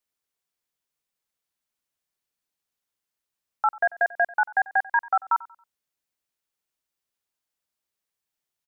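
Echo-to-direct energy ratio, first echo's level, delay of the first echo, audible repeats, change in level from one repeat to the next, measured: −20.0 dB, −20.5 dB, 92 ms, 2, −9.5 dB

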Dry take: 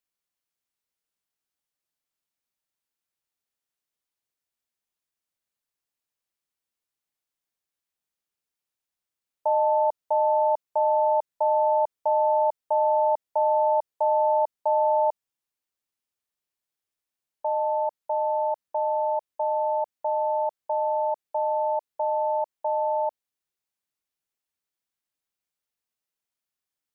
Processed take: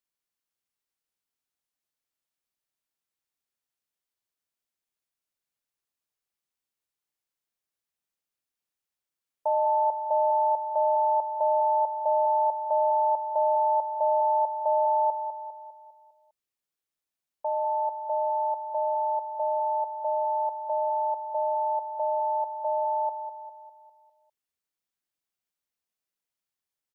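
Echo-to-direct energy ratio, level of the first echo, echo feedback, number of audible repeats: −8.0 dB, −9.0 dB, 50%, 5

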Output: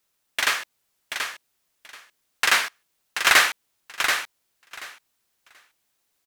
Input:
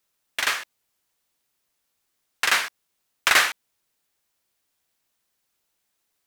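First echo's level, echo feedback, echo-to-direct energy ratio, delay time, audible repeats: −6.5 dB, 16%, −6.5 dB, 732 ms, 2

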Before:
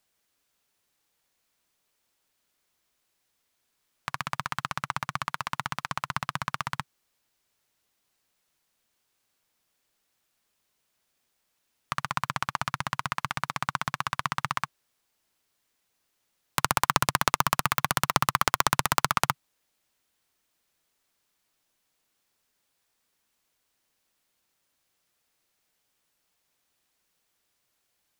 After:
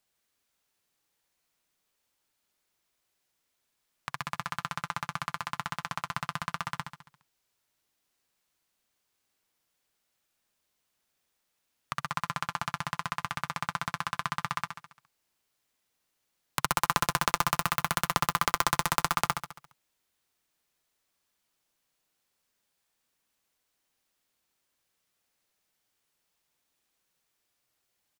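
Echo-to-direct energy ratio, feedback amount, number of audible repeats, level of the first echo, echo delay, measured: −5.5 dB, 53%, 6, −7.0 dB, 69 ms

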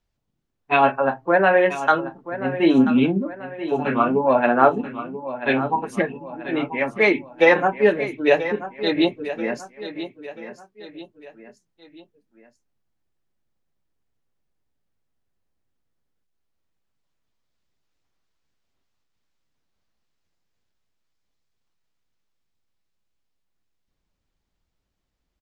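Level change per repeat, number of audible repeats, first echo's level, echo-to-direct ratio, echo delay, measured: −7.5 dB, 3, −12.5 dB, −11.5 dB, 985 ms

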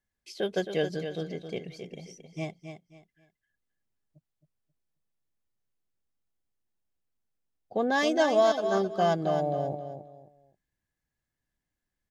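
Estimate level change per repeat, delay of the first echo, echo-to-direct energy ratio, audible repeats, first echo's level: −11.5 dB, 267 ms, −8.0 dB, 3, −8.5 dB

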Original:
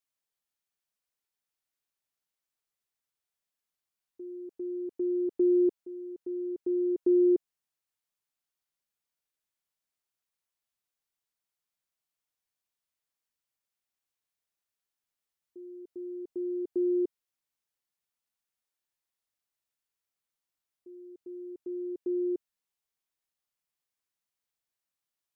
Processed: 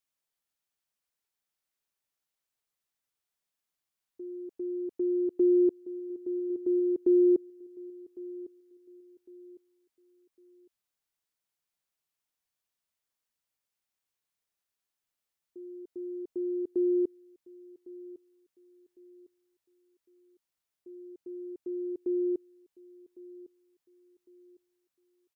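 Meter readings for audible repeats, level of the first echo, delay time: 2, −19.0 dB, 1,105 ms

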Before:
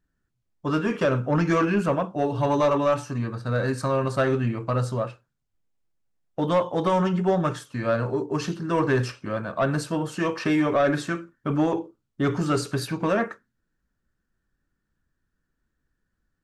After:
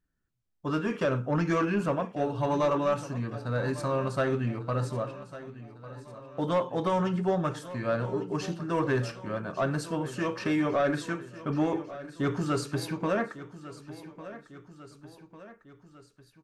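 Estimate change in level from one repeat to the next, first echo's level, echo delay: −5.0 dB, −15.5 dB, 1,150 ms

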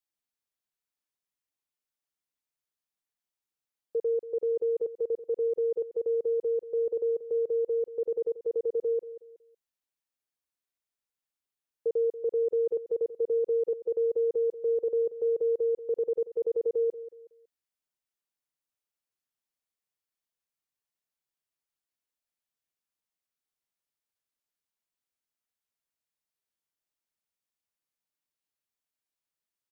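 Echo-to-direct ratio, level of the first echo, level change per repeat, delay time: −13.5 dB, −14.0 dB, −10.0 dB, 185 ms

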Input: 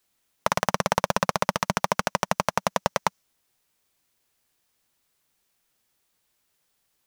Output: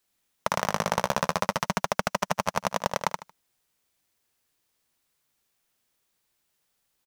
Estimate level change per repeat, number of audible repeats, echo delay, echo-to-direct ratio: −12.5 dB, 3, 76 ms, −5.0 dB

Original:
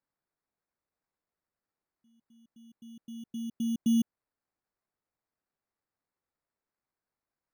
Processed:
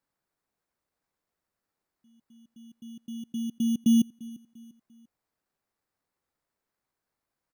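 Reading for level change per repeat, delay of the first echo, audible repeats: −8.0 dB, 346 ms, 2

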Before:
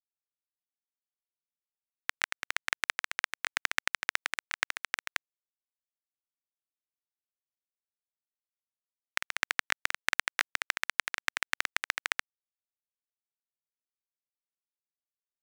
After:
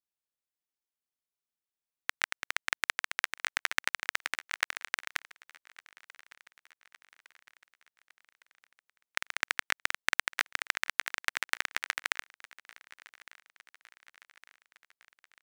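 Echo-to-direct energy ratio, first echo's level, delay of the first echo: −21.0 dB, −22.5 dB, 1,159 ms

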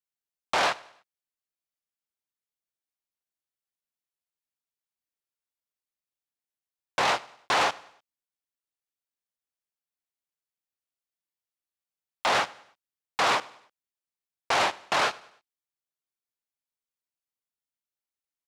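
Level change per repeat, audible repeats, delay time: −7.5 dB, 2, 99 ms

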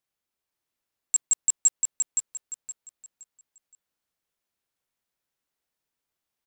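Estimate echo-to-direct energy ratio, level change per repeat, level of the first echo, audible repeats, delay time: −3.0 dB, −11.0 dB, −3.5 dB, 3, 519 ms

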